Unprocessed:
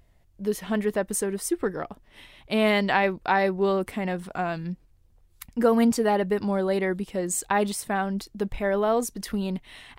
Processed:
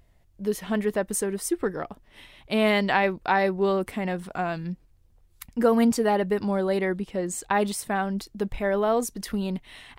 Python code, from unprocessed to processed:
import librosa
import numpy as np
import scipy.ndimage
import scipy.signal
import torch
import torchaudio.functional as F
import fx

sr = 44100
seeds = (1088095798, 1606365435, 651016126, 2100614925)

y = fx.high_shelf(x, sr, hz=6700.0, db=-9.0, at=(6.92, 7.51))